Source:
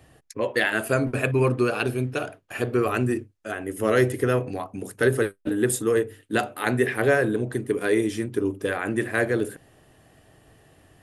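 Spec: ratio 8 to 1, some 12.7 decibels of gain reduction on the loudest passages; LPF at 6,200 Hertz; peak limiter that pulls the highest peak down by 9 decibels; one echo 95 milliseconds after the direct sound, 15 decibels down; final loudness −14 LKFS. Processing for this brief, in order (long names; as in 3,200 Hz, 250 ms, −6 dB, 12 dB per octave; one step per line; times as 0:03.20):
low-pass filter 6,200 Hz
downward compressor 8 to 1, threshold −29 dBFS
brickwall limiter −24.5 dBFS
single-tap delay 95 ms −15 dB
level +22 dB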